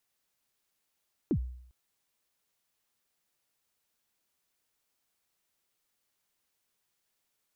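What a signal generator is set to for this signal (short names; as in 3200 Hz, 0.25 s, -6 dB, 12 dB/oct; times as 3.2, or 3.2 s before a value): kick drum length 0.40 s, from 380 Hz, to 62 Hz, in 76 ms, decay 0.68 s, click off, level -22 dB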